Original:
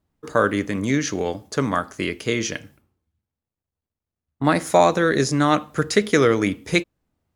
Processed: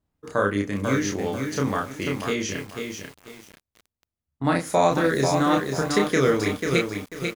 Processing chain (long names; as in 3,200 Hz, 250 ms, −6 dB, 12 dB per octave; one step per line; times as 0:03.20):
parametric band 62 Hz +3.5 dB 1.8 octaves
double-tracking delay 30 ms −3 dB
feedback echo at a low word length 492 ms, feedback 35%, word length 6 bits, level −5 dB
level −5.5 dB